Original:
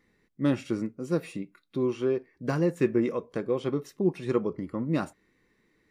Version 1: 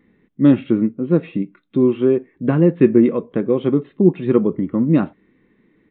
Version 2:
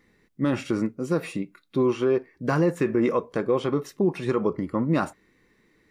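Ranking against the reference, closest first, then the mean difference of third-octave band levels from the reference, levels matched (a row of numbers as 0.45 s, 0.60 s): 2, 1; 2.0 dB, 5.0 dB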